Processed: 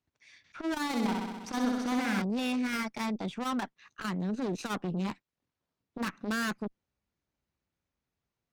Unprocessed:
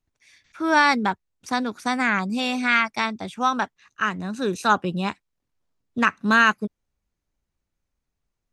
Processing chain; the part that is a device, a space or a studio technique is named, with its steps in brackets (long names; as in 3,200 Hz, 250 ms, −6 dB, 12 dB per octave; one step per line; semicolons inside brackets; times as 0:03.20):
valve radio (band-pass filter 81–5,400 Hz; tube saturation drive 30 dB, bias 0.45; saturating transformer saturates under 310 Hz)
dynamic equaliser 220 Hz, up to +5 dB, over −50 dBFS, Q 0.82
0:00.87–0:02.22: flutter between parallel walls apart 11 metres, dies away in 1.3 s